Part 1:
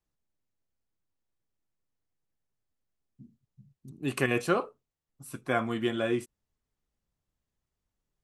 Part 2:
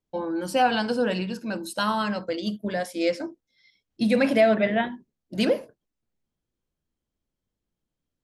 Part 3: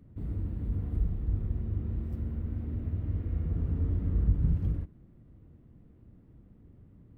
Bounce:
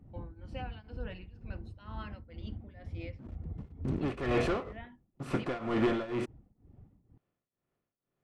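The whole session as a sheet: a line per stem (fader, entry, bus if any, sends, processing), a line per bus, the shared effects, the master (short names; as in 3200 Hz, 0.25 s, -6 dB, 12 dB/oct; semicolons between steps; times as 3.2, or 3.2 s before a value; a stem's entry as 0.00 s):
-9.5 dB, 0.00 s, no send, per-bin compression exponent 0.6; sample leveller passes 5
-17.0 dB, 0.00 s, no send, bell 2300 Hz +11.5 dB 1.5 oct; compressor, threshold -19 dBFS, peak gain reduction 9 dB
+3.0 dB, 0.00 s, no send, reverb removal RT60 0.9 s; bell 780 Hz +10 dB 0.37 oct; compressor 3:1, threshold -40 dBFS, peak gain reduction 14.5 dB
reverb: off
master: tremolo triangle 2.1 Hz, depth 90%; tape spacing loss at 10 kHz 23 dB; notch 1600 Hz, Q 15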